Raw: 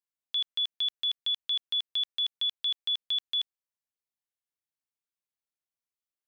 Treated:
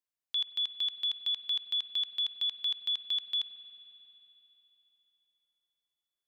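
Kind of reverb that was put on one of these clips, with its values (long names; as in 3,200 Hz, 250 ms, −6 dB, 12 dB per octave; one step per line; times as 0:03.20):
spring reverb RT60 3.5 s, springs 45 ms, chirp 45 ms, DRR 12.5 dB
level −2 dB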